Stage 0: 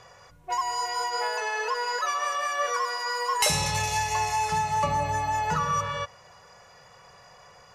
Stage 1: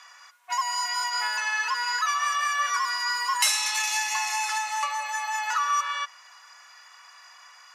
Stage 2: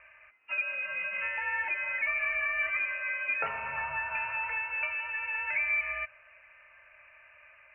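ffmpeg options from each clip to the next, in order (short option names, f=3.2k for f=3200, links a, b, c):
-filter_complex "[0:a]highpass=f=1.1k:w=0.5412,highpass=f=1.1k:w=1.3066,asplit=2[a][b];[b]alimiter=limit=-22.5dB:level=0:latency=1:release=451,volume=-2dB[c];[a][c]amix=inputs=2:normalize=0"
-af "lowpass=f=3k:t=q:w=0.5098,lowpass=f=3k:t=q:w=0.6013,lowpass=f=3k:t=q:w=0.9,lowpass=f=3k:t=q:w=2.563,afreqshift=-3500,volume=-4.5dB"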